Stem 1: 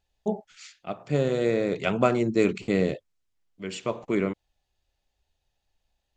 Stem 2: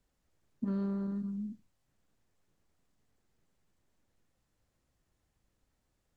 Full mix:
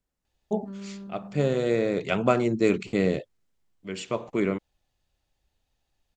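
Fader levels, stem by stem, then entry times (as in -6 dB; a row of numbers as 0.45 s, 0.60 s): 0.0 dB, -5.5 dB; 0.25 s, 0.00 s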